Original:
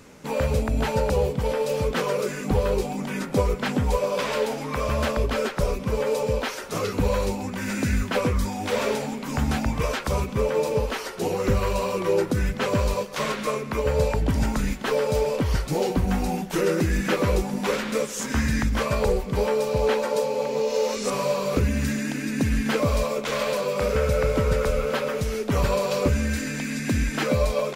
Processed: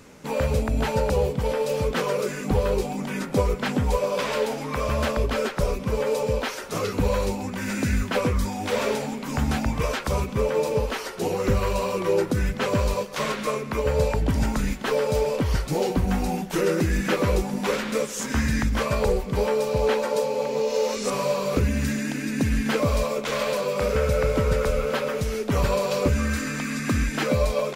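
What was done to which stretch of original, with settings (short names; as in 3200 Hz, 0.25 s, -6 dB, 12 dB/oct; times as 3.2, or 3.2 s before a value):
26.17–27.06 bell 1200 Hz +14.5 dB 0.31 oct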